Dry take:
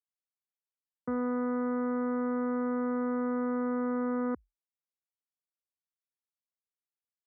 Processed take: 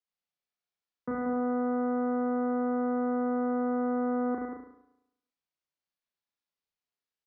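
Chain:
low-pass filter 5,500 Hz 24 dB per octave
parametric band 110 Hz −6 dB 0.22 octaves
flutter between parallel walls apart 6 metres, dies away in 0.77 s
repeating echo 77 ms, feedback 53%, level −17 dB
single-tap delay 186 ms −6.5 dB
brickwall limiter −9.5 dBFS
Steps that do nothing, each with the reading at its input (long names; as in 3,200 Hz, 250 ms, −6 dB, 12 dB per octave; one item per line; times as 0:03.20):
low-pass filter 5,500 Hz: nothing at its input above 1,500 Hz
brickwall limiter −9.5 dBFS: peak of its input −23.5 dBFS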